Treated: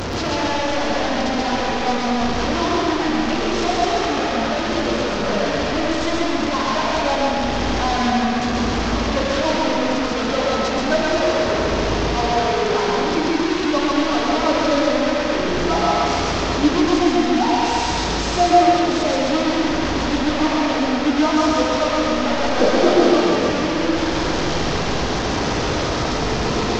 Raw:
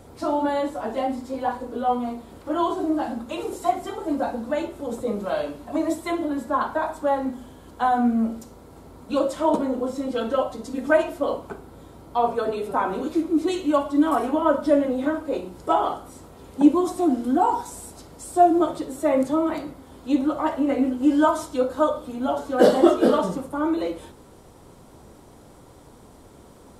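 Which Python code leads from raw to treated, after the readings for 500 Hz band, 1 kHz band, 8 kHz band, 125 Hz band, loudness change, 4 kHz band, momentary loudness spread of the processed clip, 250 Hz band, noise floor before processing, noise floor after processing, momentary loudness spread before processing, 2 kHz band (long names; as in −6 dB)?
+4.5 dB, +5.0 dB, +12.5 dB, +15.0 dB, +4.5 dB, +18.0 dB, 4 LU, +4.0 dB, −49 dBFS, −22 dBFS, 11 LU, +12.0 dB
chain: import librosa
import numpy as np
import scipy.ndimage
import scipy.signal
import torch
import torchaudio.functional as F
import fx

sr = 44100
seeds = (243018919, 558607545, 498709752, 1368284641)

p1 = fx.delta_mod(x, sr, bps=32000, step_db=-16.5)
p2 = p1 + fx.echo_feedback(p1, sr, ms=133, feedback_pct=38, wet_db=-3, dry=0)
p3 = fx.rev_freeverb(p2, sr, rt60_s=1.9, hf_ratio=0.7, predelay_ms=85, drr_db=0.5)
y = p3 * 10.0 ** (-2.5 / 20.0)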